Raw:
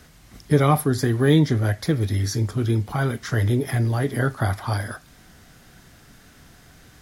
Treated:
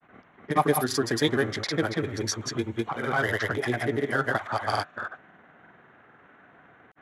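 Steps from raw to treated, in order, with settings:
adaptive Wiener filter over 9 samples
low-pass that shuts in the quiet parts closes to 1,600 Hz, open at −18.5 dBFS
meter weighting curve A
in parallel at −3 dB: brickwall limiter −19.5 dBFS, peak gain reduction 10.5 dB
on the sum: granular cloud 100 ms, spray 206 ms, pitch spread up and down by 0 semitones

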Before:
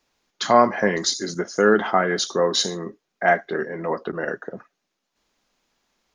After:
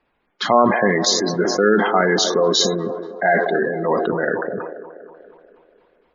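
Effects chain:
low-pass that shuts in the quiet parts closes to 2,500 Hz, open at −14.5 dBFS
gate on every frequency bin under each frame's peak −20 dB strong
in parallel at −2 dB: compressor whose output falls as the input rises −22 dBFS, ratio −1
on the sum: delay with a band-pass on its return 241 ms, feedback 56%, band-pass 550 Hz, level −10.5 dB
level that may fall only so fast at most 44 dB per second
level −1 dB

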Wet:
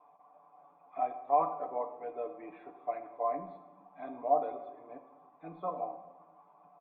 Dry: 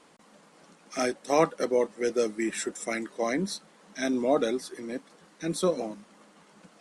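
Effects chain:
high-shelf EQ 3,000 Hz +10.5 dB
comb filter 6.9 ms, depth 91%
in parallel at −1.5 dB: brickwall limiter −15.5 dBFS, peak gain reduction 11.5 dB
on the sum: formant resonators in series a
rectangular room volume 530 cubic metres, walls mixed, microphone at 0.57 metres

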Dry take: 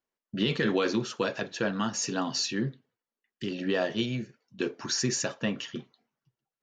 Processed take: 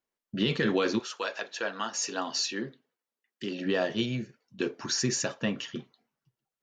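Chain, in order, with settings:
0:00.98–0:03.64: high-pass filter 760 Hz → 180 Hz 12 dB per octave

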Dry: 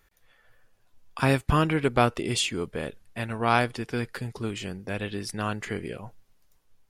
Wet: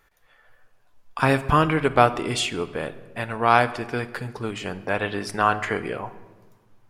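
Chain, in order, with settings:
parametric band 1,000 Hz +7.5 dB 2.5 octaves, from 0:04.66 +14.5 dB
rectangular room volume 960 cubic metres, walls mixed, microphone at 0.39 metres
level −1 dB

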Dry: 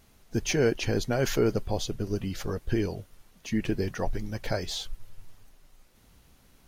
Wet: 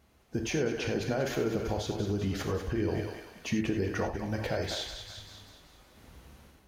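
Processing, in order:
parametric band 170 Hz −3 dB 0.97 octaves
on a send: feedback echo with a high-pass in the loop 193 ms, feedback 50%, high-pass 880 Hz, level −8 dB
on the sum: automatic gain control gain up to 10 dB
in parallel at +1 dB: brickwall limiter −16.5 dBFS, peak gain reduction 11.5 dB
on the sum: downward compressor, threshold −18 dBFS, peak gain reduction 10 dB
high-pass filter 41 Hz 24 dB per octave
high-shelf EQ 3,200 Hz −9.5 dB
reverb whose tail is shaped and stops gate 120 ms flat, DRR 4.5 dB
level −9 dB

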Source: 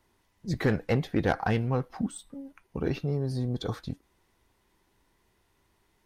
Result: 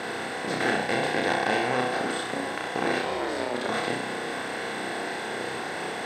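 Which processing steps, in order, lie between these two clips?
compressor on every frequency bin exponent 0.2
0:00.71–0:01.64: notch filter 1,300 Hz, Q 7.4
0:02.98–0:03.68: ring modulation 290 Hz → 100 Hz
meter weighting curve A
on a send: flutter between parallel walls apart 5.5 metres, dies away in 0.55 s
on the sum: level −3 dB

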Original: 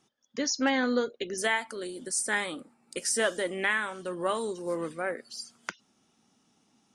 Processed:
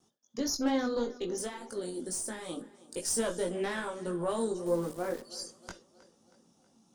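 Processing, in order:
one-sided soft clipper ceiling −24 dBFS
noise gate with hold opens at −60 dBFS
in parallel at −0.5 dB: brickwall limiter −25.5 dBFS, peak gain reduction 11.5 dB
0:01.27–0:02.49: on the sum: downward compressor, threshold −28 dBFS, peak gain reduction 8 dB
multi-voice chorus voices 6, 1.1 Hz, delay 20 ms, depth 3 ms
0:04.66–0:05.22: centre clipping without the shift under −40.5 dBFS
parametric band 2,100 Hz −12.5 dB 1.5 octaves
tape delay 318 ms, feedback 55%, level −19 dB, low-pass 5,700 Hz
on a send at −18 dB: convolution reverb, pre-delay 33 ms

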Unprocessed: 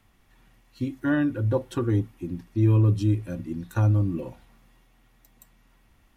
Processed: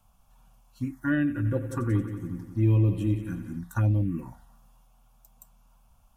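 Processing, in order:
phaser swept by the level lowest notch 330 Hz, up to 1,400 Hz, full sweep at −16 dBFS
graphic EQ with 15 bands 100 Hz −5 dB, 400 Hz −7 dB, 4,000 Hz −7 dB
0:01.18–0:03.59: echo machine with several playback heads 90 ms, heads first and second, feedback 53%, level −13 dB
level +2 dB

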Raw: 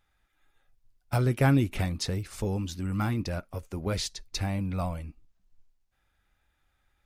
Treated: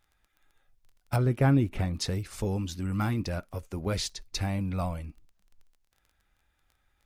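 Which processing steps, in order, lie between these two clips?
0:01.16–0:01.94: high-shelf EQ 2,300 Hz −10.5 dB
surface crackle 17 per second −47 dBFS

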